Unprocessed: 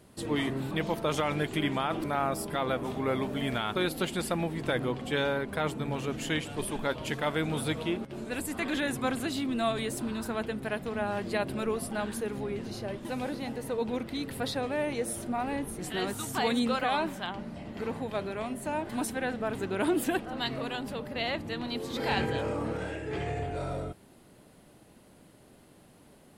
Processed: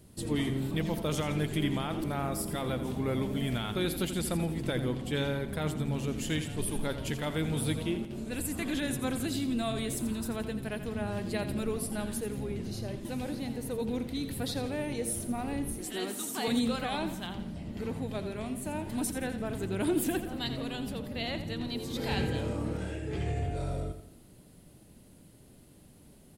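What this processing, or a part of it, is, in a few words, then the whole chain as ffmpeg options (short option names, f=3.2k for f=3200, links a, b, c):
smiley-face EQ: -filter_complex "[0:a]asettb=1/sr,asplit=3[a][b][c];[a]atrim=end=15.784[d];[b]atrim=start=15.78:end=16.48,asetpts=PTS-STARTPTS,afade=t=in:d=0.004:c=qsin,afade=t=out:st=0.696:d=0.004:c=qsin,highpass=f=230:w=0.5412,highpass=f=230:w=1.3066[e];[c]atrim=start=16.476[f];[d][e]acrossfade=d=0.004:c1=hsin:c2=qsin[g];[g][f]acrossfade=d=0.004:c1=qsin:c2=hsin,lowshelf=f=150:g=7,equalizer=f=1.1k:t=o:w=2.6:g=-8,highshelf=f=8.5k:g=4.5,aecho=1:1:85|170|255|340|425:0.282|0.127|0.0571|0.0257|0.0116"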